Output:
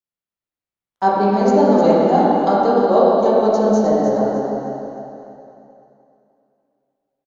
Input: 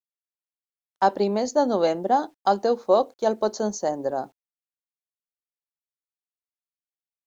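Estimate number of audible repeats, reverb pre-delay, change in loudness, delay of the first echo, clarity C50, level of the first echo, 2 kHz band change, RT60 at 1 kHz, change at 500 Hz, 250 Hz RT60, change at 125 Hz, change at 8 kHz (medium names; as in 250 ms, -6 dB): 1, 6 ms, +8.0 dB, 304 ms, -4.5 dB, -7.5 dB, +6.0 dB, 2.9 s, +8.5 dB, 2.8 s, +13.5 dB, no reading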